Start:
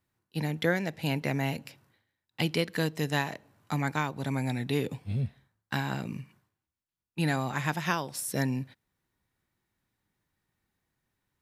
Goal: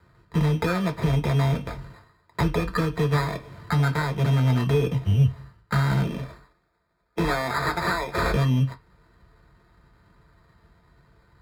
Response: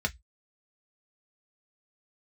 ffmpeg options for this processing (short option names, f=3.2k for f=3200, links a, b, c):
-filter_complex "[0:a]asettb=1/sr,asplit=3[a][b][c];[a]atrim=end=6.064[d];[b]atrim=start=6.06:end=8.21,asetpts=PTS-STARTPTS,afade=t=in:d=0.004:c=qsin,afade=t=out:st=2.146:d=0.004:c=qsin,highpass=330[e];[c]atrim=start=8.206[f];[d][e]acrossfade=d=0.004:c1=hsin:c2=qsin[g];[g][f]acrossfade=d=0.004:c1=qsin:c2=hsin,acompressor=threshold=-41dB:ratio=5,acrusher=samples=15:mix=1:aa=0.000001,aeval=exprs='0.0422*(cos(1*acos(clip(val(0)/0.0422,-1,1)))-cos(1*PI/2))+0.00668*(cos(5*acos(clip(val(0)/0.0422,-1,1)))-cos(5*PI/2))':c=same[h];[1:a]atrim=start_sample=2205,asetrate=30429,aresample=44100[i];[h][i]afir=irnorm=-1:irlink=0,volume=6dB"